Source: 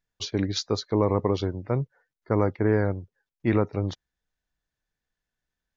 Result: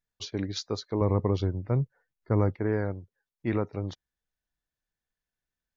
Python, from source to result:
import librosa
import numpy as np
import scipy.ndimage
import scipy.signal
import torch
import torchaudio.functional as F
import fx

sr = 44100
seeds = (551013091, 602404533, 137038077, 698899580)

y = fx.low_shelf(x, sr, hz=180.0, db=10.5, at=(1.01, 2.58))
y = F.gain(torch.from_numpy(y), -5.5).numpy()